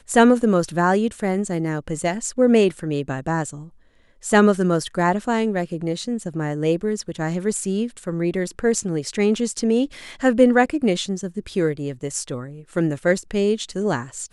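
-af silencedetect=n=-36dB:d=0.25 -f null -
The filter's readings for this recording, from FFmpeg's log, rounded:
silence_start: 3.67
silence_end: 4.23 | silence_duration: 0.56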